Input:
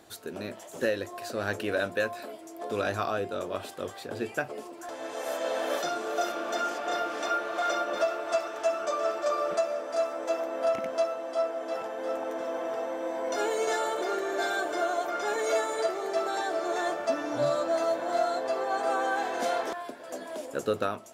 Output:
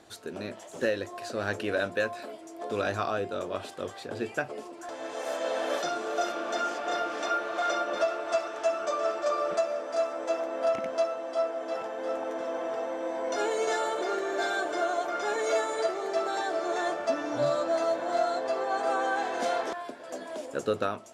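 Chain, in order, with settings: low-pass 8.9 kHz 12 dB/octave

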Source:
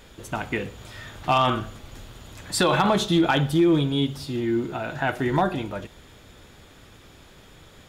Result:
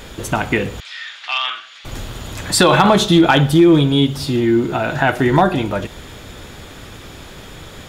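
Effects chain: in parallel at +1 dB: compression, threshold -33 dBFS, peak gain reduction 16 dB; 0.80–1.85 s: on the sum: Butterworth band-pass 3 kHz, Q 0.89; trim +7 dB

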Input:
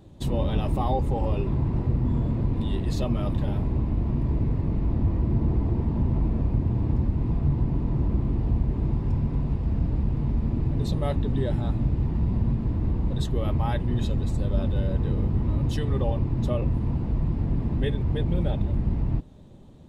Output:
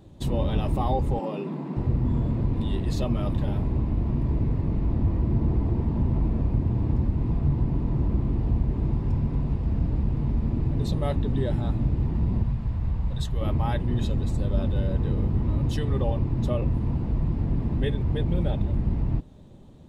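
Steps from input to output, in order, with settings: 1.19–1.77 s: Chebyshev high-pass 150 Hz, order 8; 12.43–13.41 s: peaking EQ 320 Hz -12.5 dB 1.4 oct

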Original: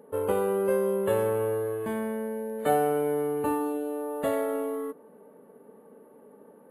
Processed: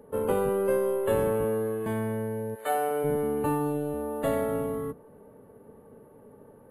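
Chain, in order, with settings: octave divider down 1 oct, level -2 dB; 2.54–3.03 s: high-pass 910 Hz -> 360 Hz 12 dB/octave

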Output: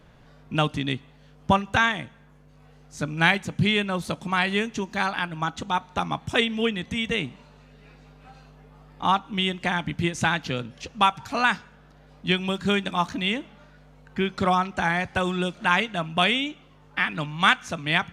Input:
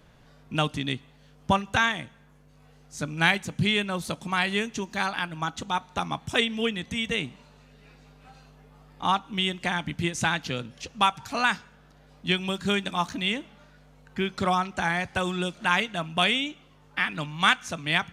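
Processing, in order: treble shelf 4.4 kHz -7 dB; trim +3 dB

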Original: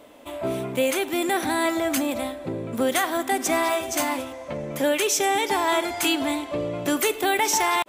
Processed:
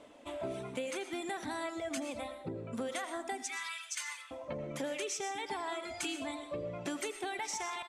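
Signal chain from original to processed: 3.43–4.31 s: high-pass 1.4 kHz 24 dB/octave; reverb removal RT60 1.4 s; low-pass 9.4 kHz 24 dB/octave; compression, threshold -29 dBFS, peak gain reduction 10.5 dB; delay 82 ms -17.5 dB; on a send at -9 dB: reverberation RT60 0.35 s, pre-delay 75 ms; on the sum: trim -6.5 dB

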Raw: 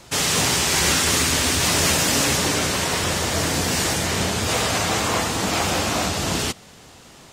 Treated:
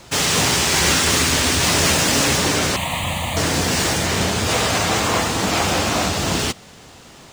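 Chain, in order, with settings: median filter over 3 samples; 2.76–3.37 s: static phaser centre 1.5 kHz, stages 6; trim +3 dB

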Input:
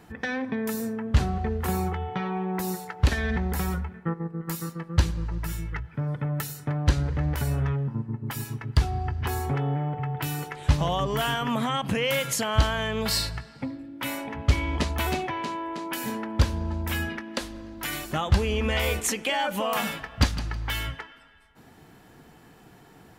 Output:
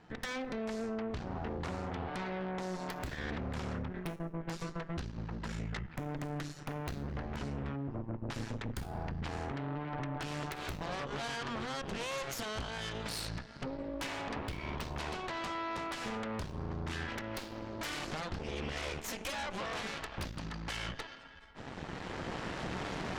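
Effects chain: recorder AGC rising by 9.9 dB/s; low-pass 6.4 kHz 24 dB/octave; treble shelf 2.9 kHz -3.5 dB; hum notches 50/100/150/200/250/300/350/400/450 Hz; compression 5:1, threshold -31 dBFS, peak gain reduction 15.5 dB; integer overflow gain 20 dB; feedback comb 180 Hz, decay 0.57 s, harmonics odd, mix 60%; Chebyshev shaper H 5 -16 dB, 8 -6 dB, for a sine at -27 dBFS; trim -4.5 dB

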